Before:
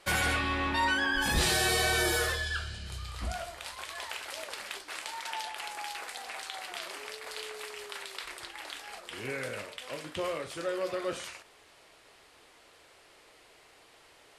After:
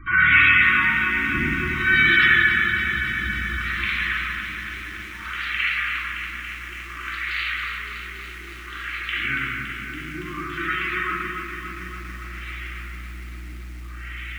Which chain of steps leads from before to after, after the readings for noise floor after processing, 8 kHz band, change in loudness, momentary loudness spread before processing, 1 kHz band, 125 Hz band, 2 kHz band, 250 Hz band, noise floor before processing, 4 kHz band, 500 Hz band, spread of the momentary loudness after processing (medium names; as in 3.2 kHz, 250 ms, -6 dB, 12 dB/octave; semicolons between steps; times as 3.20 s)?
-36 dBFS, -11.5 dB, +12.0 dB, 15 LU, +6.0 dB, +7.0 dB, +15.0 dB, +7.0 dB, -59 dBFS, +4.5 dB, -5.0 dB, 20 LU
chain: frequency weighting D; hum 60 Hz, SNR 30 dB; elliptic band-stop 320–1200 Hz, stop band 40 dB; bass shelf 370 Hz +2.5 dB; peak limiter -15.5 dBFS, peak gain reduction 7 dB; upward compressor, threshold -36 dBFS; LFO low-pass sine 0.58 Hz 370–2200 Hz; simulated room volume 1600 m³, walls mixed, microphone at 3.6 m; spectral gate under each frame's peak -25 dB strong; on a send: bucket-brigade echo 568 ms, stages 2048, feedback 63%, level -11 dB; on the sum: bit-crushed delay 282 ms, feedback 80%, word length 8-bit, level -8 dB; trim +1 dB